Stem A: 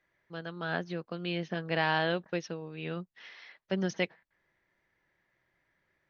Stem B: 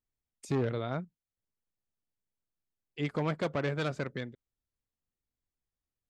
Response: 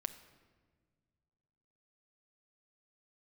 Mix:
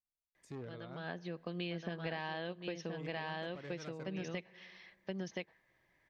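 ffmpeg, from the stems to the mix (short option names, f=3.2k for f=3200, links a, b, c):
-filter_complex "[0:a]bandreject=f=1.4k:w=6.2,adelay=350,volume=1dB,asplit=3[a][b][c];[b]volume=-18dB[d];[c]volume=-6.5dB[e];[1:a]volume=-16dB,asplit=2[f][g];[g]apad=whole_len=284415[h];[a][h]sidechaincompress=threshold=-58dB:ratio=8:attack=23:release=758[i];[2:a]atrim=start_sample=2205[j];[d][j]afir=irnorm=-1:irlink=0[k];[e]aecho=0:1:1024:1[l];[i][f][k][l]amix=inputs=4:normalize=0,acompressor=threshold=-36dB:ratio=16"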